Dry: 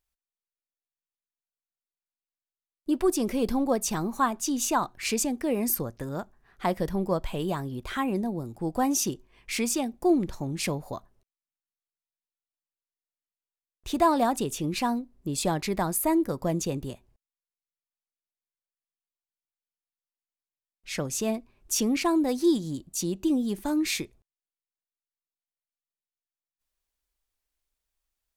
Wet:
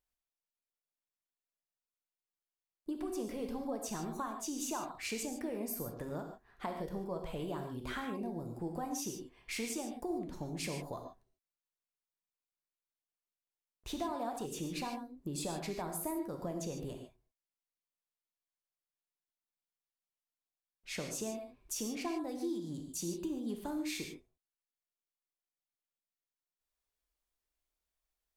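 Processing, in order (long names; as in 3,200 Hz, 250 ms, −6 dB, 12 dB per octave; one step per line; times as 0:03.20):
parametric band 630 Hz +4 dB 2.5 octaves
downward compressor, threshold −30 dBFS, peak gain reduction 15.5 dB
reverb whose tail is shaped and stops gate 170 ms flat, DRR 3.5 dB
level −7.5 dB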